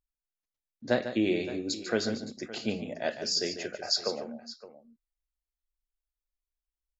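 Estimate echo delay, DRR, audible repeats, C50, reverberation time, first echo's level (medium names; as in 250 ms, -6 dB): 146 ms, no reverb, 2, no reverb, no reverb, -10.5 dB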